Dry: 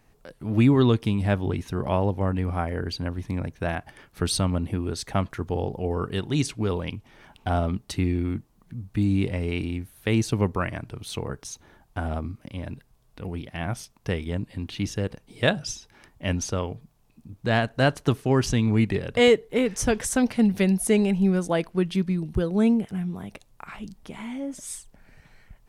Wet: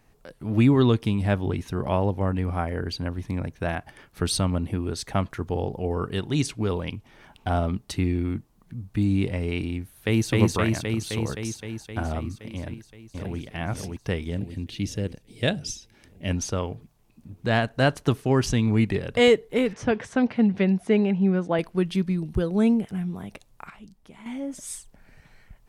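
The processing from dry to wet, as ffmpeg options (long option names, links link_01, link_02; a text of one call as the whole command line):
ffmpeg -i in.wav -filter_complex "[0:a]asplit=2[link_01][link_02];[link_02]afade=type=in:start_time=9.81:duration=0.01,afade=type=out:start_time=10.3:duration=0.01,aecho=0:1:260|520|780|1040|1300|1560|1820|2080|2340|2600|2860|3120:1|0.75|0.5625|0.421875|0.316406|0.237305|0.177979|0.133484|0.100113|0.0750847|0.0563135|0.0422351[link_03];[link_01][link_03]amix=inputs=2:normalize=0,asplit=2[link_04][link_05];[link_05]afade=type=in:start_time=12.56:duration=0.01,afade=type=out:start_time=13.38:duration=0.01,aecho=0:1:580|1160|1740|2320|2900|3480|4060|4640|5220:0.749894|0.449937|0.269962|0.161977|0.0971863|0.0583118|0.0349871|0.0209922|0.0125953[link_06];[link_04][link_06]amix=inputs=2:normalize=0,asettb=1/sr,asplit=3[link_07][link_08][link_09];[link_07]atrim=end=14.304[link_10];[link_08]atrim=start=14.3:end=16.31,asetpts=PTS-STARTPTS,afade=type=in:duration=0.004:curve=qsin,afade=type=out:start_time=2.006:duration=0.004:curve=qsin,equalizer=frequency=1100:width_type=o:width=1.4:gain=-9.5[link_11];[link_09]atrim=start=16.306[link_12];[link_10][link_11]acrossfade=duration=0.004:curve1=hsin:curve2=qsin[link_13];[link_13][link_12]acrossfade=duration=0.004:curve1=qsin:curve2=hsin,asettb=1/sr,asplit=3[link_14][link_15][link_16];[link_14]atrim=end=19.734[link_17];[link_15]atrim=start=19.73:end=21.59,asetpts=PTS-STARTPTS,afade=type=in:duration=0.004:curve=qsin,afade=type=out:start_time=1.856:duration=0.004:curve=qsin,highpass=100,lowpass=2800[link_18];[link_16]atrim=start=21.586[link_19];[link_17][link_18]acrossfade=duration=0.004:curve1=hsin:curve2=qsin[link_20];[link_20][link_19]acrossfade=duration=0.004:curve1=qsin:curve2=hsin,asplit=3[link_21][link_22][link_23];[link_21]atrim=end=23.702[link_24];[link_22]atrim=start=23.698:end=24.262,asetpts=PTS-STARTPTS,volume=-9dB[link_25];[link_23]atrim=start=24.258[link_26];[link_24][link_25]acrossfade=duration=0.004:curve1=hsin:curve2=hsin[link_27];[link_27][link_26]acrossfade=duration=0.004:curve1=hsin:curve2=hsin" out.wav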